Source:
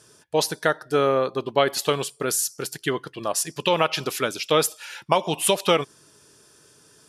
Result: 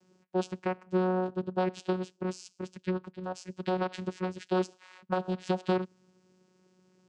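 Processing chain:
channel vocoder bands 8, saw 184 Hz
low-shelf EQ 260 Hz +4.5 dB
level −9 dB

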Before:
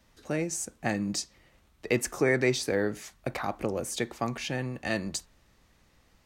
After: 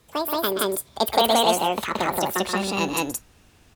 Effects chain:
gliding playback speed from 199% → 134%
loudspeakers that aren't time-aligned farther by 44 metres −9 dB, 60 metres 0 dB
level +4.5 dB

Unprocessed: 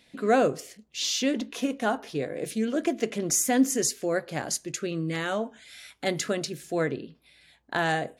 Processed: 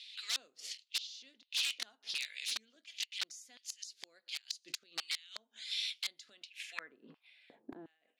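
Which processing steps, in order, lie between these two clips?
auto-filter high-pass square 1.4 Hz 220–2,700 Hz
gate with flip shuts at −19 dBFS, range −28 dB
wrap-around overflow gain 29 dB
band-pass filter sweep 4,200 Hz → 230 Hz, 0:06.26–0:07.97
level +10 dB

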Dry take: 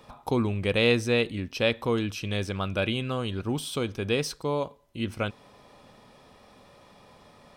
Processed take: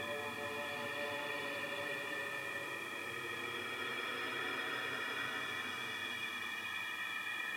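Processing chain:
spectral magnitudes quantised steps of 30 dB
high-pass filter sweep 97 Hz → 1,900 Hz, 0:02.91–0:05.87
feedback echo with a long and a short gap by turns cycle 1,040 ms, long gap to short 1.5 to 1, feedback 36%, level −23.5 dB
extreme stretch with random phases 15×, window 0.25 s, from 0:06.58
level +14.5 dB

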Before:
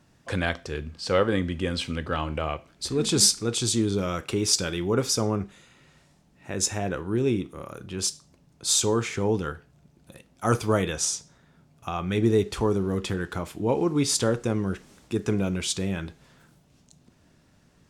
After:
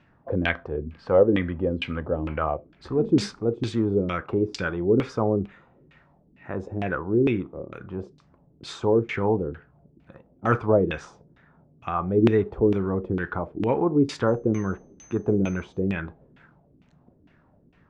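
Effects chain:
0:14.27–0:15.80: steady tone 6,200 Hz −30 dBFS
auto-filter low-pass saw down 2.2 Hz 270–2,800 Hz

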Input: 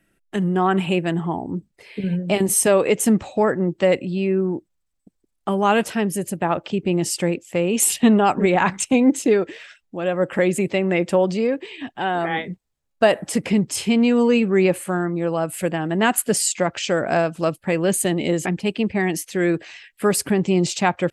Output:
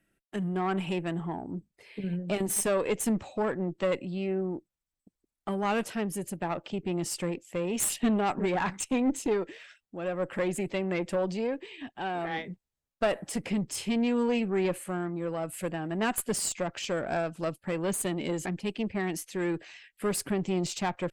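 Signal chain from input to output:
one-sided soft clipper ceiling −15 dBFS
level −8.5 dB

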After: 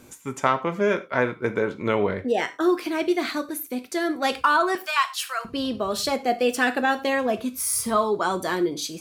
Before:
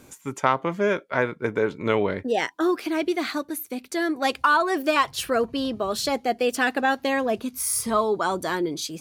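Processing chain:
0:01.59–0:02.52: dynamic equaliser 4,400 Hz, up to −4 dB, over −41 dBFS, Q 0.91
0:04.75–0:05.45: high-pass filter 930 Hz 24 dB per octave
reverb whose tail is shaped and stops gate 130 ms falling, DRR 8.5 dB

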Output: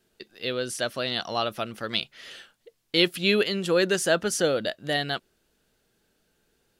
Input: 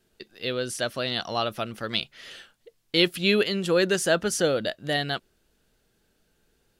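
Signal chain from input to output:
low-shelf EQ 99 Hz −7 dB

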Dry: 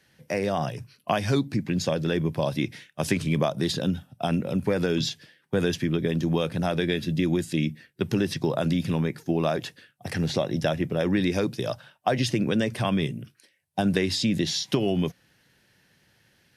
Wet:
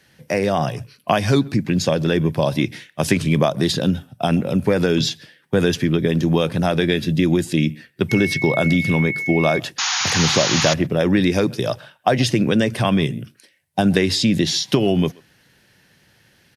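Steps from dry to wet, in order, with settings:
0:09.78–0:10.74: sound drawn into the spectrogram noise 720–7,000 Hz −28 dBFS
far-end echo of a speakerphone 130 ms, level −24 dB
0:08.09–0:09.58: steady tone 2,200 Hz −30 dBFS
level +7 dB

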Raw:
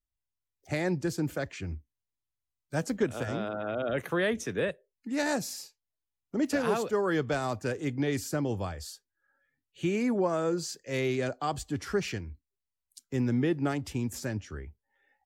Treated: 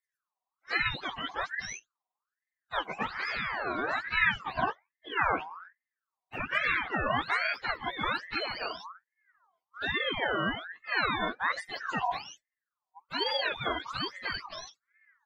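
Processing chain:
frequency axis turned over on the octave scale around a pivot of 580 Hz
parametric band 960 Hz −10 dB 0.66 octaves
ring modulator whose carrier an LFO sweeps 1,400 Hz, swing 40%, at 1.2 Hz
level +5.5 dB

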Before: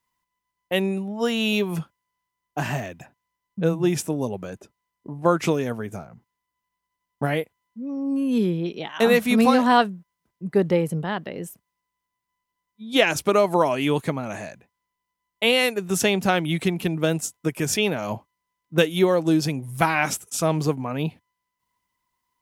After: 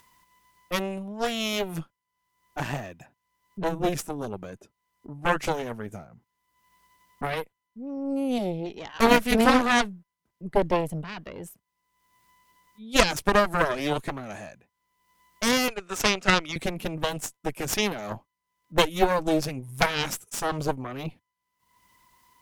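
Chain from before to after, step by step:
0:15.68–0:16.56: loudspeaker in its box 460–8,400 Hz, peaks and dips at 570 Hz +5 dB, 850 Hz −8 dB, 1,300 Hz +10 dB, 2,400 Hz +4 dB
upward compression, threshold −37 dBFS
harmonic generator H 3 −16 dB, 4 −8 dB, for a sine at −2.5 dBFS

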